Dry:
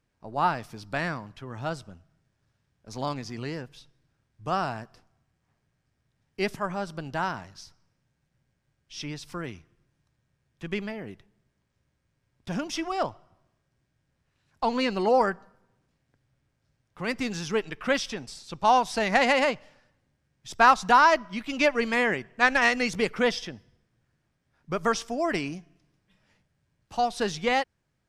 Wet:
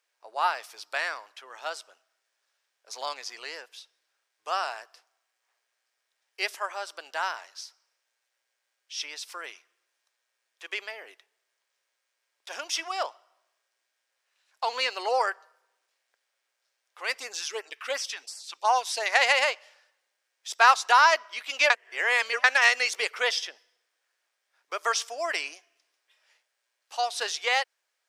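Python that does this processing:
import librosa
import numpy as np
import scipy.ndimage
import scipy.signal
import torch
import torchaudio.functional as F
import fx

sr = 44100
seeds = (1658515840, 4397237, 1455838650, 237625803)

y = fx.filter_lfo_notch(x, sr, shape='sine', hz=2.8, low_hz=480.0, high_hz=3800.0, q=0.76, at=(17.19, 19.06))
y = fx.edit(y, sr, fx.reverse_span(start_s=21.7, length_s=0.74), tone=tone)
y = scipy.signal.sosfilt(scipy.signal.cheby2(4, 50, 180.0, 'highpass', fs=sr, output='sos'), y)
y = fx.tilt_shelf(y, sr, db=-6.0, hz=1200.0)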